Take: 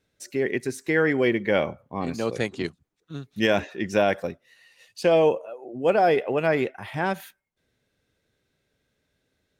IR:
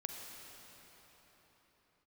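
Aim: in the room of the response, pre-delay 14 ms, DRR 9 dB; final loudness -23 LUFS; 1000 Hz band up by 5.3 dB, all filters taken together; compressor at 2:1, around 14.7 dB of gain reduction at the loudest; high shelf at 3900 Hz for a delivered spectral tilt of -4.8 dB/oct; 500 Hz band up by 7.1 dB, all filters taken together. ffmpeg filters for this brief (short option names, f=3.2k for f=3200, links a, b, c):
-filter_complex "[0:a]equalizer=f=500:t=o:g=7.5,equalizer=f=1k:t=o:g=4,highshelf=f=3.9k:g=-4,acompressor=threshold=-37dB:ratio=2,asplit=2[a][b];[1:a]atrim=start_sample=2205,adelay=14[c];[b][c]afir=irnorm=-1:irlink=0,volume=-8.5dB[d];[a][d]amix=inputs=2:normalize=0,volume=8.5dB"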